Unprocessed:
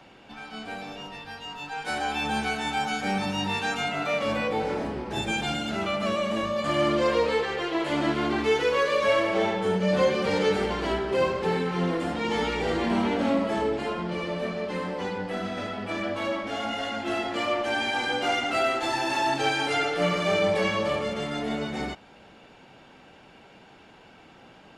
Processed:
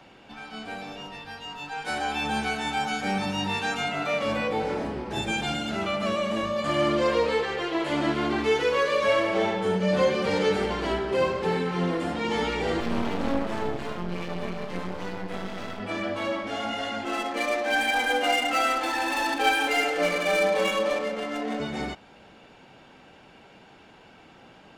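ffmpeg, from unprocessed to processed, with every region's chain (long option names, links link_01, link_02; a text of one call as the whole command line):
ffmpeg -i in.wav -filter_complex "[0:a]asettb=1/sr,asplit=3[link_01][link_02][link_03];[link_01]atrim=end=12.804[link_04];[link_02]atrim=start=12.8:end=15.8,asetpts=PTS-STARTPTS,afade=type=in:duration=0.004:curve=qsin,afade=type=out:start_time=2.996:duration=0.004:curve=qsin,equalizer=frequency=140:width=1.5:gain=9,bandreject=frequency=50:width_type=h:width=6,bandreject=frequency=100:width_type=h:width=6,bandreject=frequency=150:width_type=h:width=6,bandreject=frequency=200:width_type=h:width=6,bandreject=frequency=250:width_type=h:width=6,bandreject=frequency=300:width_type=h:width=6,bandreject=frequency=350:width_type=h:width=6,aeval=exprs='max(val(0),0)':channel_layout=same[link_05];[link_03]atrim=start=15.796[link_06];[link_04][link_05]acrossfade=duration=0.004:curve1=hsin:curve2=qsin[link_07];[link_07][link_06]acrossfade=duration=0.004:curve1=qsin:curve2=hsin,asettb=1/sr,asplit=3[link_08][link_09][link_10];[link_08]atrim=end=17.054[link_11];[link_09]atrim=start=17.05:end=21.6,asetpts=PTS-STARTPTS,afade=type=in:duration=0.004:curve=qsin,afade=type=out:start_time=4.546:duration=0.004:curve=qsin,highpass=300,adynamicsmooth=sensitivity=6:basefreq=960,aecho=1:1:3.9:0.77,atrim=end_sample=200655[link_12];[link_10]atrim=start=21.596[link_13];[link_11][link_12]acrossfade=duration=0.004:curve1=hsin:curve2=qsin[link_14];[link_14][link_13]acrossfade=duration=0.004:curve1=qsin:curve2=hsin" out.wav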